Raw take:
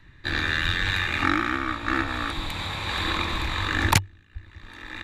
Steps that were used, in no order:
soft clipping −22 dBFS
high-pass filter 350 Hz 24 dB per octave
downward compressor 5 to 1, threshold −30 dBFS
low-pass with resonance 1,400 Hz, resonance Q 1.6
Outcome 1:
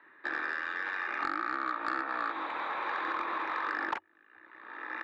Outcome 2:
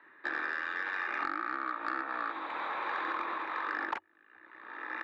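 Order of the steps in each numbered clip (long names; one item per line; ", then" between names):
high-pass filter, then downward compressor, then low-pass with resonance, then soft clipping
low-pass with resonance, then downward compressor, then high-pass filter, then soft clipping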